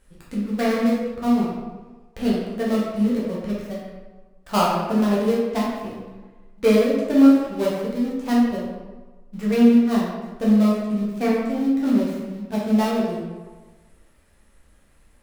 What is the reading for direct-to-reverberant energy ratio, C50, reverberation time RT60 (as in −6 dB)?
−7.0 dB, 0.0 dB, 1.3 s